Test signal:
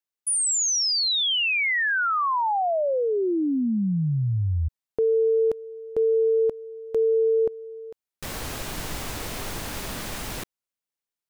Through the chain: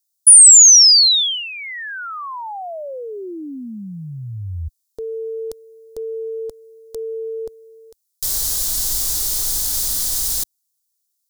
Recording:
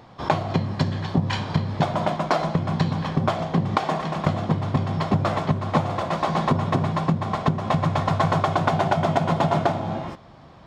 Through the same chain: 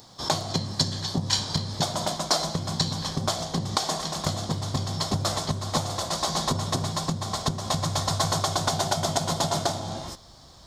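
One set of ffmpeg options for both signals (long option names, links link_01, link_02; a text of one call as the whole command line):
ffmpeg -i in.wav -af "asubboost=boost=3.5:cutoff=75,aexciter=amount=13.5:drive=3.1:freq=3800,volume=-5.5dB" out.wav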